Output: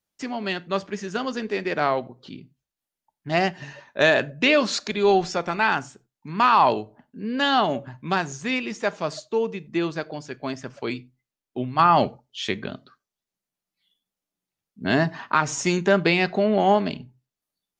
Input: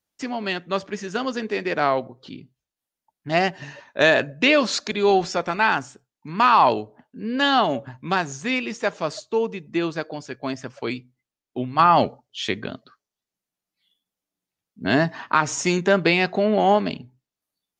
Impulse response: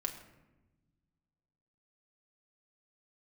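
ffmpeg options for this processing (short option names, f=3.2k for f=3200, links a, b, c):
-filter_complex "[0:a]asplit=2[a][b];[b]lowshelf=f=150:g=10[c];[1:a]atrim=start_sample=2205,atrim=end_sample=4410[d];[c][d]afir=irnorm=-1:irlink=0,volume=-11.5dB[e];[a][e]amix=inputs=2:normalize=0,volume=-3.5dB"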